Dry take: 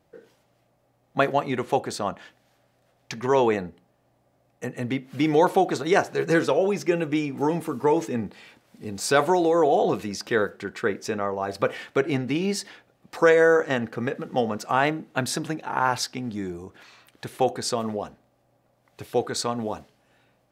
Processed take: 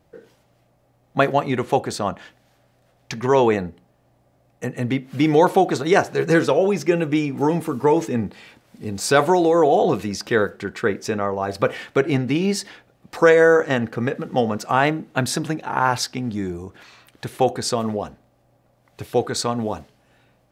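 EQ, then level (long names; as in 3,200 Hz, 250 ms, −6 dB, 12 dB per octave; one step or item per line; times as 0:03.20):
low-shelf EQ 120 Hz +7.5 dB
+3.5 dB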